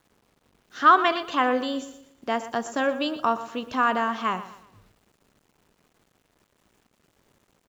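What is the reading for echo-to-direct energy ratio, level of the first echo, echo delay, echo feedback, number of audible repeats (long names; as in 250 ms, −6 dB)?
−14.0 dB, −14.5 dB, 120 ms, 38%, 3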